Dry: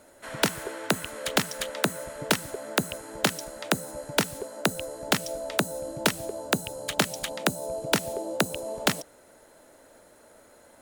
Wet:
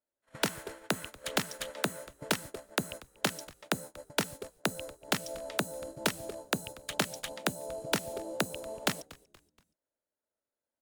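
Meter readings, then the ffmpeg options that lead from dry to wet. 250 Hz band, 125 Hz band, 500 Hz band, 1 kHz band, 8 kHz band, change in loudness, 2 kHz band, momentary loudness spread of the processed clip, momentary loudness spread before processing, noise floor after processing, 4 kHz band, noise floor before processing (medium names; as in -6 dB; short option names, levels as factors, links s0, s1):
-6.5 dB, -6.5 dB, -7.0 dB, -6.5 dB, -6.5 dB, -6.5 dB, -6.0 dB, 7 LU, 6 LU, under -85 dBFS, -6.0 dB, -56 dBFS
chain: -filter_complex "[0:a]aeval=exprs='0.501*(cos(1*acos(clip(val(0)/0.501,-1,1)))-cos(1*PI/2))+0.00562*(cos(7*acos(clip(val(0)/0.501,-1,1)))-cos(7*PI/2))':c=same,agate=range=0.0224:threshold=0.0158:ratio=16:detection=peak,asplit=4[s0][s1][s2][s3];[s1]adelay=237,afreqshift=-120,volume=0.0841[s4];[s2]adelay=474,afreqshift=-240,volume=0.0335[s5];[s3]adelay=711,afreqshift=-360,volume=0.0135[s6];[s0][s4][s5][s6]amix=inputs=4:normalize=0,volume=0.501"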